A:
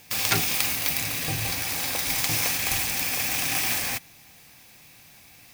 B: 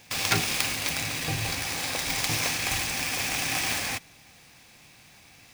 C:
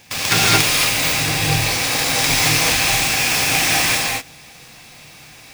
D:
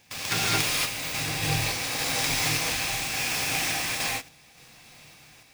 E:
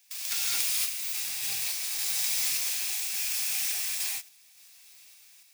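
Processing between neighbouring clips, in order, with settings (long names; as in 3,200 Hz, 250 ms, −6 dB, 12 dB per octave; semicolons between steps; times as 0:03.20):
running median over 3 samples
reverb whose tail is shaped and stops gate 250 ms rising, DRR −5.5 dB; level +5 dB
sample-and-hold tremolo; level −7.5 dB
first-order pre-emphasis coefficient 0.97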